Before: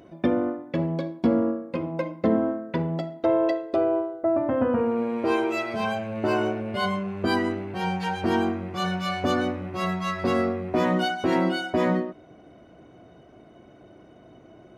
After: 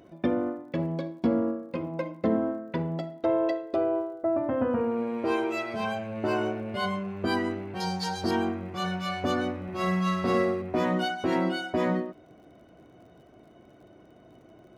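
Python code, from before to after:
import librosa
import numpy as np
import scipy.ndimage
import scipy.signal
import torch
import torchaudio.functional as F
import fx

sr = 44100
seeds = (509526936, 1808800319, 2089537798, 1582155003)

y = fx.dmg_crackle(x, sr, seeds[0], per_s=44.0, level_db=-51.0)
y = fx.high_shelf_res(y, sr, hz=3500.0, db=9.0, q=3.0, at=(7.8, 8.31))
y = fx.room_flutter(y, sr, wall_m=8.4, rt60_s=0.69, at=(9.63, 10.62))
y = F.gain(torch.from_numpy(y), -3.5).numpy()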